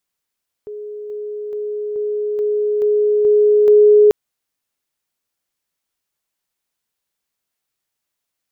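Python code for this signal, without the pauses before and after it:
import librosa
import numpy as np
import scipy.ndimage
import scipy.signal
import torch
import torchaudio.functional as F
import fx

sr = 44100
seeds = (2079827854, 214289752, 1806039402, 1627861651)

y = fx.level_ladder(sr, hz=419.0, from_db=-27.0, step_db=3.0, steps=8, dwell_s=0.43, gap_s=0.0)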